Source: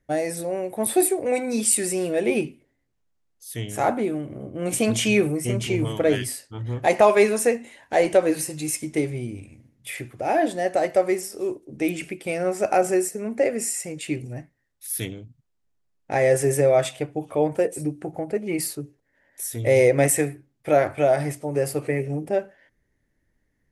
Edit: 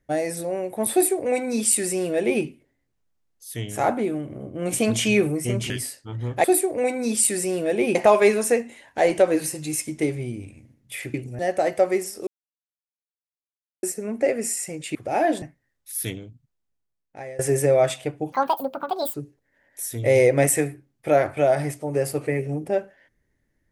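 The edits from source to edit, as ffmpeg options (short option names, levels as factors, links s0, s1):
-filter_complex "[0:a]asplit=13[s0][s1][s2][s3][s4][s5][s6][s7][s8][s9][s10][s11][s12];[s0]atrim=end=5.702[s13];[s1]atrim=start=6.158:end=6.902[s14];[s2]atrim=start=0.918:end=2.432[s15];[s3]atrim=start=6.898:end=10.092[s16];[s4]atrim=start=14.118:end=14.372[s17];[s5]atrim=start=10.558:end=11.44,asetpts=PTS-STARTPTS,afade=t=out:st=0.878:d=0.004:c=hsin[s18];[s6]atrim=start=11.44:end=13,asetpts=PTS-STARTPTS,volume=0[s19];[s7]atrim=start=13:end=14.122,asetpts=PTS-STARTPTS,afade=t=in:d=0.004:c=hsin[s20];[s8]atrim=start=10.088:end=10.562[s21];[s9]atrim=start=14.368:end=16.34,asetpts=PTS-STARTPTS,afade=t=out:st=0.672:d=1.3:silence=0.0668344[s22];[s10]atrim=start=16.34:end=17.274,asetpts=PTS-STARTPTS,afade=t=in:d=0.004:c=hsin:silence=0.0668344[s23];[s11]atrim=start=17.27:end=18.75,asetpts=PTS-STARTPTS,asetrate=79380,aresample=44100[s24];[s12]atrim=start=18.746[s25];[s13][s14]acrossfade=d=0.004:c1=hsin:c2=hsin[s26];[s26][s15]acrossfade=d=0.004:c1=hsin:c2=hsin[s27];[s27][s16]acrossfade=d=0.004:c1=hsin:c2=hsin[s28];[s28][s17]acrossfade=d=0.004:c1=hsin:c2=hsin[s29];[s18][s19][s20]concat=n=3:v=0:a=1[s30];[s29][s30]acrossfade=d=0.004:c1=hsin:c2=hsin[s31];[s31][s21]acrossfade=d=0.004:c1=hsin:c2=hsin[s32];[s22][s23]concat=n=2:v=0:a=1[s33];[s32][s33]acrossfade=d=0.004:c1=hsin:c2=hsin[s34];[s34][s24]acrossfade=d=0.004:c1=hsin:c2=hsin[s35];[s35][s25]acrossfade=d=0.004:c1=hsin:c2=hsin"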